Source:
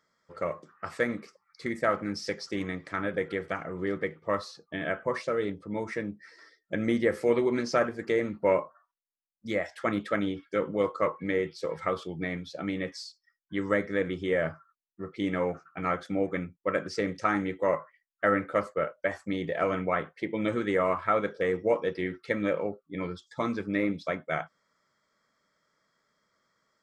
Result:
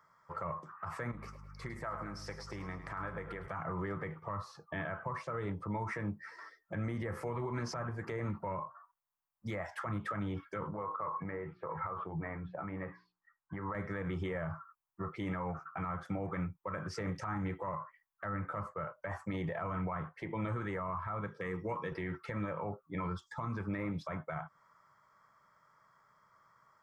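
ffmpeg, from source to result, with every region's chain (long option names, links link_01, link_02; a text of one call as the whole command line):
ffmpeg -i in.wav -filter_complex "[0:a]asettb=1/sr,asplit=3[link_01][link_02][link_03];[link_01]atrim=end=1.114[link_04];[link_02]atrim=start=1.11:end=3.48,asetpts=PTS-STARTPTS,afade=type=in:duration=0.004:curve=qsin,afade=type=out:start_time=2.366:duration=0.004:curve=qsin,acompressor=threshold=-43dB:ratio=3:attack=3.2:release=140:knee=1:detection=peak,aeval=exprs='val(0)+0.00178*(sin(2*PI*50*n/s)+sin(2*PI*2*50*n/s)/2+sin(2*PI*3*50*n/s)/3+sin(2*PI*4*50*n/s)/4+sin(2*PI*5*50*n/s)/5)':channel_layout=same,aecho=1:1:106|212|318|424|530:0.224|0.105|0.0495|0.0232|0.0109,atrim=end_sample=104517[link_05];[link_03]atrim=start=3.476[link_06];[link_04][link_05]acrossfade=duration=0.004:curve1=hsin:curve2=qsin[link_07];[link_07][link_06]acrossfade=duration=0.004:curve1=qsin:curve2=hsin,asettb=1/sr,asplit=3[link_08][link_09][link_10];[link_08]atrim=end=10.674[link_11];[link_09]atrim=start=10.67:end=13.75,asetpts=PTS-STARTPTS,afade=type=in:duration=0.004:curve=qsin,afade=type=out:start_time=3.076:duration=0.004:curve=qsin,lowpass=frequency=2000:width=0.5412,lowpass=frequency=2000:width=1.3066,acompressor=threshold=-36dB:ratio=6:attack=3.2:release=140:knee=1:detection=peak,bandreject=frequency=60:width_type=h:width=6,bandreject=frequency=120:width_type=h:width=6,bandreject=frequency=180:width_type=h:width=6,bandreject=frequency=240:width_type=h:width=6,bandreject=frequency=300:width_type=h:width=6,bandreject=frequency=360:width_type=h:width=6,bandreject=frequency=420:width_type=h:width=6[link_12];[link_10]atrim=start=13.746[link_13];[link_11][link_12]acrossfade=duration=0.004:curve1=hsin:curve2=qsin[link_14];[link_14][link_13]acrossfade=duration=0.004:curve1=qsin:curve2=hsin,asettb=1/sr,asplit=3[link_15][link_16][link_17];[link_15]atrim=end=21.274[link_18];[link_16]atrim=start=21.27:end=21.92,asetpts=PTS-STARTPTS,afade=type=in:duration=0.004:curve=qsin,afade=type=out:start_time=0.646:duration=0.004:curve=qsin,highpass=frequency=100:width=0.5412,highpass=frequency=100:width=1.3066,equalizer=frequency=680:width=1.4:gain=-12,bandreject=frequency=1500:width=8.6[link_19];[link_17]atrim=start=21.916[link_20];[link_18][link_19]acrossfade=duration=0.004:curve1=hsin:curve2=qsin[link_21];[link_21][link_20]acrossfade=duration=0.004:curve1=qsin:curve2=hsin,equalizer=frequency=125:width_type=o:width=1:gain=7,equalizer=frequency=250:width_type=o:width=1:gain=-10,equalizer=frequency=500:width_type=o:width=1:gain=-6,equalizer=frequency=1000:width_type=o:width=1:gain=12,equalizer=frequency=2000:width_type=o:width=1:gain=-3,equalizer=frequency=4000:width_type=o:width=1:gain=-11,equalizer=frequency=8000:width_type=o:width=1:gain=-6,acrossover=split=230[link_22][link_23];[link_23]acompressor=threshold=-35dB:ratio=6[link_24];[link_22][link_24]amix=inputs=2:normalize=0,alimiter=level_in=9.5dB:limit=-24dB:level=0:latency=1:release=69,volume=-9.5dB,volume=4.5dB" out.wav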